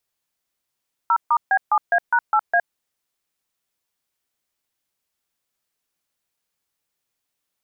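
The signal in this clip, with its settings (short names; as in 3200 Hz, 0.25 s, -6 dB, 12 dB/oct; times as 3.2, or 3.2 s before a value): DTMF "0*B7A#8A", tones 64 ms, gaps 0.141 s, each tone -16.5 dBFS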